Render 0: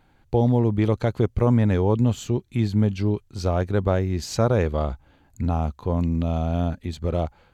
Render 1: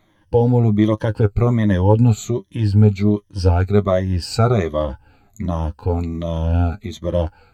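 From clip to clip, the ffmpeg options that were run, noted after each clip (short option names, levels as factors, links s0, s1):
-af "afftfilt=real='re*pow(10,15/40*sin(2*PI*(1.2*log(max(b,1)*sr/1024/100)/log(2)-(-1.3)*(pts-256)/sr)))':imag='im*pow(10,15/40*sin(2*PI*(1.2*log(max(b,1)*sr/1024/100)/log(2)-(-1.3)*(pts-256)/sr)))':win_size=1024:overlap=0.75,flanger=delay=9.2:depth=1.2:regen=38:speed=1:shape=triangular,volume=1.88"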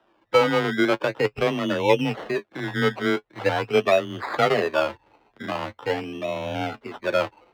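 -filter_complex "[0:a]acrusher=samples=20:mix=1:aa=0.000001:lfo=1:lforange=12:lforate=0.43,afreqshift=20,acrossover=split=310 3900:gain=0.0891 1 0.0794[s0][s1][s2];[s0][s1][s2]amix=inputs=3:normalize=0"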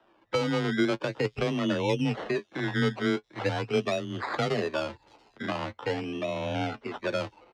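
-filter_complex "[0:a]lowpass=7000,acrossover=split=300|4100[s0][s1][s2];[s1]acompressor=threshold=0.0355:ratio=6[s3];[s2]aecho=1:1:684:0.075[s4];[s0][s3][s4]amix=inputs=3:normalize=0"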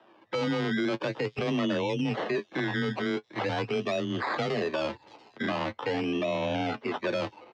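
-af "bandreject=f=1400:w=15,alimiter=level_in=1.26:limit=0.0631:level=0:latency=1:release=22,volume=0.794,highpass=130,lowpass=6000,volume=1.88"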